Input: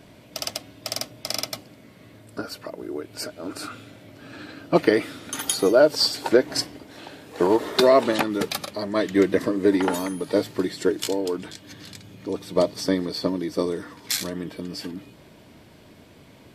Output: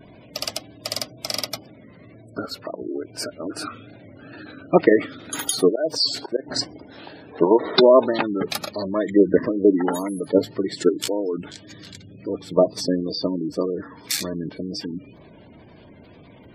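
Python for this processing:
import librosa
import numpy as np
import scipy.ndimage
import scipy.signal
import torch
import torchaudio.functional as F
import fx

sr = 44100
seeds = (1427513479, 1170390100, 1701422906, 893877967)

p1 = fx.wow_flutter(x, sr, seeds[0], rate_hz=2.1, depth_cents=83.0)
p2 = fx.auto_swell(p1, sr, attack_ms=196.0, at=(5.69, 6.46), fade=0.02)
p3 = fx.level_steps(p2, sr, step_db=18)
p4 = p2 + (p3 * librosa.db_to_amplitude(0.0))
p5 = fx.spec_gate(p4, sr, threshold_db=-20, keep='strong')
y = p5 * librosa.db_to_amplitude(-1.0)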